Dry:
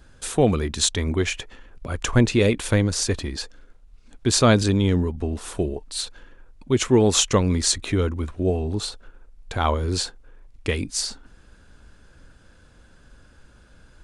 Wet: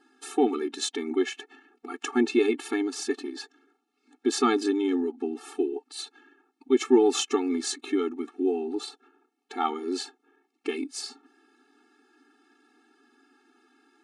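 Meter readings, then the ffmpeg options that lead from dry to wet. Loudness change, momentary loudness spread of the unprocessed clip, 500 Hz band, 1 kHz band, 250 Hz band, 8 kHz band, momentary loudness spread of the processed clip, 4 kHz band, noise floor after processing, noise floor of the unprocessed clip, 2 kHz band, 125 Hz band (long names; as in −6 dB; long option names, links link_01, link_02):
−5.0 dB, 14 LU, −3.0 dB, −3.0 dB, −3.0 dB, −11.0 dB, 16 LU, −8.5 dB, −76 dBFS, −53 dBFS, −7.0 dB, below −35 dB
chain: -af "highshelf=frequency=3500:gain=-9,afftfilt=real='re*eq(mod(floor(b*sr/1024/230),2),1)':imag='im*eq(mod(floor(b*sr/1024/230),2),1)':win_size=1024:overlap=0.75"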